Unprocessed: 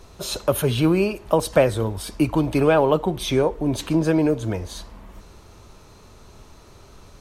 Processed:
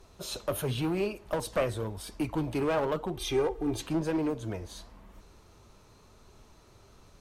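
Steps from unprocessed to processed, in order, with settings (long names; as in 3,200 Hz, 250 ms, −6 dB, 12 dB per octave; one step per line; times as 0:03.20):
flanger 0.95 Hz, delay 2.2 ms, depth 8.2 ms, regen +75%
asymmetric clip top −21 dBFS
0:03.17–0:03.82: comb filter 2.5 ms, depth 77%
level −5 dB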